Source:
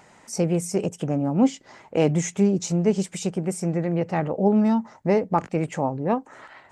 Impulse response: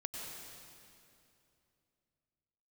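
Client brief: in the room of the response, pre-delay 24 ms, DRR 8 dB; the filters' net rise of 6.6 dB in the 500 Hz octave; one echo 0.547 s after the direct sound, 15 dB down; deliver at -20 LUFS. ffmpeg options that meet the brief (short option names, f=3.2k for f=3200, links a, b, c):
-filter_complex "[0:a]equalizer=f=500:t=o:g=8,aecho=1:1:547:0.178,asplit=2[a][b];[1:a]atrim=start_sample=2205,adelay=24[c];[b][c]afir=irnorm=-1:irlink=0,volume=-8dB[d];[a][d]amix=inputs=2:normalize=0,volume=-0.5dB"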